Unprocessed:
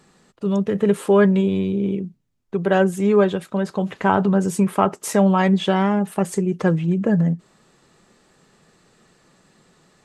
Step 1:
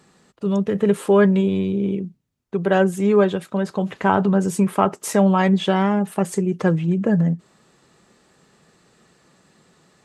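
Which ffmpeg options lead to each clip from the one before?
-af "highpass=41"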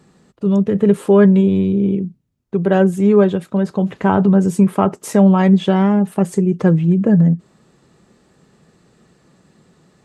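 -af "lowshelf=f=490:g=9.5,volume=0.794"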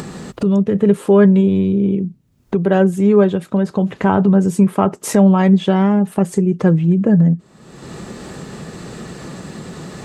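-af "acompressor=mode=upward:threshold=0.224:ratio=2.5"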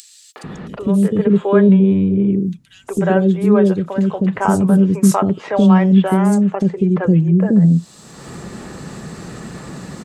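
-filter_complex "[0:a]acrossover=split=450|3300[s0][s1][s2];[s1]adelay=360[s3];[s0]adelay=440[s4];[s4][s3][s2]amix=inputs=3:normalize=0,volume=1.12"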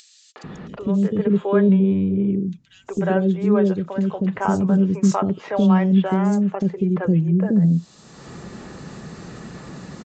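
-af "aresample=16000,aresample=44100,volume=0.562"

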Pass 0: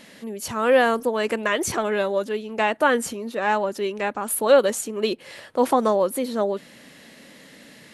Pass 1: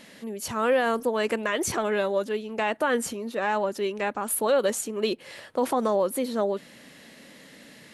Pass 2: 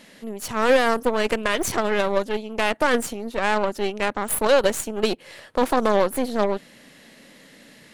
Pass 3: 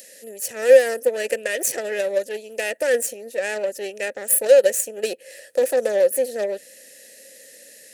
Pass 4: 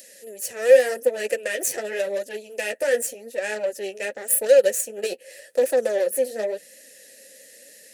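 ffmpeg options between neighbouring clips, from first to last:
-af "alimiter=limit=0.237:level=0:latency=1:release=41,volume=0.794"
-af "acontrast=70,aeval=exprs='0.376*(cos(1*acos(clip(val(0)/0.376,-1,1)))-cos(1*PI/2))+0.0668*(cos(3*acos(clip(val(0)/0.376,-1,1)))-cos(3*PI/2))+0.0299*(cos(6*acos(clip(val(0)/0.376,-1,1)))-cos(6*PI/2))':c=same"
-filter_complex "[0:a]acrossover=split=5700[s0][s1];[s0]asplit=3[s2][s3][s4];[s2]bandpass=f=530:t=q:w=8,volume=1[s5];[s3]bandpass=f=1840:t=q:w=8,volume=0.501[s6];[s4]bandpass=f=2480:t=q:w=8,volume=0.355[s7];[s5][s6][s7]amix=inputs=3:normalize=0[s8];[s1]acompressor=mode=upward:threshold=0.00447:ratio=2.5[s9];[s8][s9]amix=inputs=2:normalize=0,volume=2.51"
-af "flanger=delay=2.8:depth=8.9:regen=-22:speed=0.88:shape=triangular,volume=1.19"

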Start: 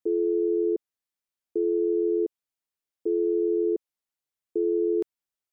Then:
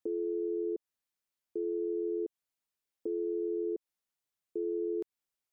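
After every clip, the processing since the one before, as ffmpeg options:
-af "alimiter=level_in=1.5:limit=0.0631:level=0:latency=1:release=131,volume=0.668"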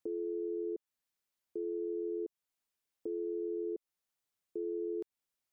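-af "alimiter=level_in=2.51:limit=0.0631:level=0:latency=1:release=336,volume=0.398,volume=1.12"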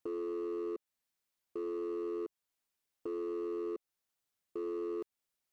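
-af "volume=56.2,asoftclip=hard,volume=0.0178,volume=1.12"

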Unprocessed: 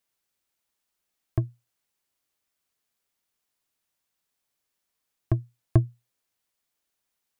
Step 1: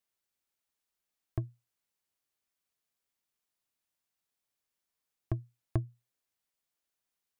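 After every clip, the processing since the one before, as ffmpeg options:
-af "acompressor=threshold=0.0708:ratio=2,volume=0.473"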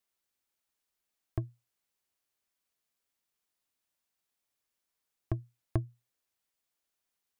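-af "equalizer=f=140:t=o:w=0.51:g=-3.5,volume=1.19"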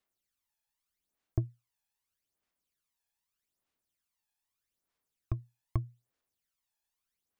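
-af "aphaser=in_gain=1:out_gain=1:delay=1.2:decay=0.65:speed=0.81:type=sinusoidal,volume=0.562"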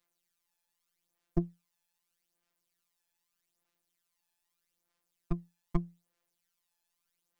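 -af "afftfilt=real='hypot(re,im)*cos(PI*b)':imag='0':win_size=1024:overlap=0.75,volume=2.37"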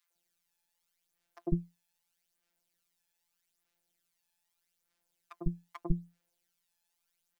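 -filter_complex "[0:a]acrossover=split=320|960[s0][s1][s2];[s1]adelay=100[s3];[s0]adelay=150[s4];[s4][s3][s2]amix=inputs=3:normalize=0,volume=1.19"

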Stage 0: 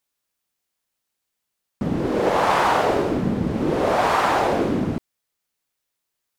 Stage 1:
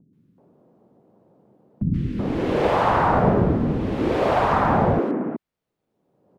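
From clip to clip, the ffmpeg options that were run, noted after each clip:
-filter_complex "[0:a]bass=f=250:g=7,treble=f=4000:g=-14,acrossover=split=240|2000[s0][s1][s2];[s2]adelay=130[s3];[s1]adelay=380[s4];[s0][s4][s3]amix=inputs=3:normalize=0,acrossover=split=150|630|2900[s5][s6][s7][s8];[s6]acompressor=mode=upward:threshold=0.0501:ratio=2.5[s9];[s5][s9][s7][s8]amix=inputs=4:normalize=0"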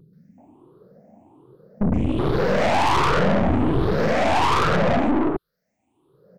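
-filter_complex "[0:a]afftfilt=real='re*pow(10,21/40*sin(2*PI*(0.62*log(max(b,1)*sr/1024/100)/log(2)-(1.3)*(pts-256)/sr)))':imag='im*pow(10,21/40*sin(2*PI*(0.62*log(max(b,1)*sr/1024/100)/log(2)-(1.3)*(pts-256)/sr)))':win_size=1024:overlap=0.75,asplit=2[s0][s1];[s1]alimiter=limit=0.237:level=0:latency=1:release=76,volume=1.12[s2];[s0][s2]amix=inputs=2:normalize=0,aeval=exprs='(tanh(7.08*val(0)+0.75)-tanh(0.75))/7.08':c=same"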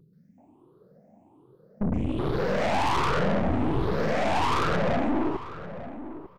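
-filter_complex "[0:a]asplit=2[s0][s1];[s1]adelay=897,lowpass=f=1700:p=1,volume=0.237,asplit=2[s2][s3];[s3]adelay=897,lowpass=f=1700:p=1,volume=0.16[s4];[s0][s2][s4]amix=inputs=3:normalize=0,volume=0.501"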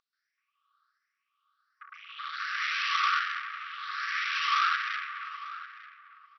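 -af "afftfilt=real='re*between(b*sr/4096,1100,5900)':imag='im*between(b*sr/4096,1100,5900)':win_size=4096:overlap=0.75,volume=1.5"

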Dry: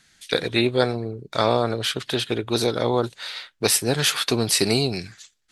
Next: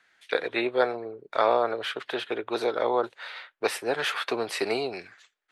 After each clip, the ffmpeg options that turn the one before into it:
-filter_complex "[0:a]acrossover=split=380 2600:gain=0.0631 1 0.112[s0][s1][s2];[s0][s1][s2]amix=inputs=3:normalize=0"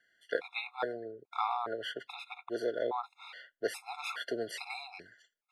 -af "afftfilt=real='re*gt(sin(2*PI*1.2*pts/sr)*(1-2*mod(floor(b*sr/1024/690),2)),0)':imag='im*gt(sin(2*PI*1.2*pts/sr)*(1-2*mod(floor(b*sr/1024/690),2)),0)':win_size=1024:overlap=0.75,volume=0.501"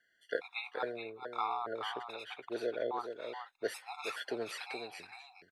-af "aecho=1:1:424:0.422,volume=0.75"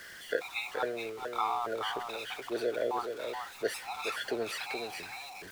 -af "aeval=exprs='val(0)+0.5*0.00531*sgn(val(0))':c=same,volume=1.41"

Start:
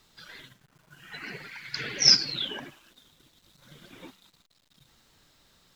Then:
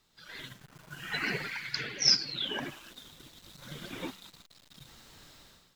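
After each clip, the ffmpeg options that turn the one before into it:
-af "dynaudnorm=f=110:g=7:m=6.68,volume=0.376"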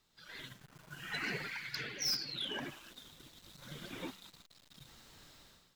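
-af "asoftclip=type=tanh:threshold=0.0501,volume=0.631"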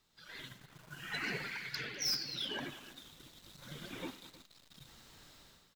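-af "aecho=1:1:95|200|317:0.112|0.112|0.106"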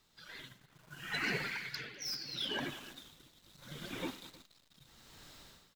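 -af "tremolo=f=0.74:d=0.68,volume=1.5"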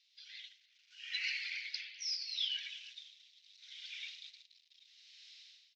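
-af "asuperpass=centerf=3600:order=8:qfactor=0.98,volume=1.33"

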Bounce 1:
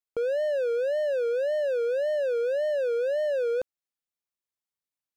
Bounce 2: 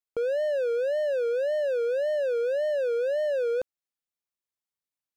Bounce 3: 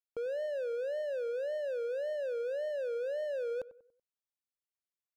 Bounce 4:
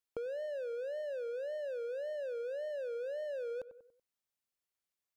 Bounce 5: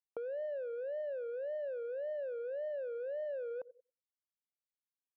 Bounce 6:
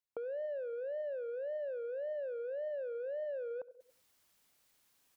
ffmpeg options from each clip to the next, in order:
-af anull
-filter_complex "[0:a]asplit=2[s0][s1];[s1]adelay=95,lowpass=f=1400:p=1,volume=0.15,asplit=2[s2][s3];[s3]adelay=95,lowpass=f=1400:p=1,volume=0.42,asplit=2[s4][s5];[s5]adelay=95,lowpass=f=1400:p=1,volume=0.42,asplit=2[s6][s7];[s7]adelay=95,lowpass=f=1400:p=1,volume=0.42[s8];[s0][s2][s4][s6][s8]amix=inputs=5:normalize=0,volume=0.355"
-af "acompressor=threshold=0.00891:ratio=4,volume=1.41"
-af "anlmdn=0.0251,bandpass=f=820:t=q:w=0.9:csg=0,volume=1.26"
-af "areverse,acompressor=mode=upward:threshold=0.00251:ratio=2.5,areverse,aecho=1:1:68|136|204:0.0708|0.0319|0.0143"

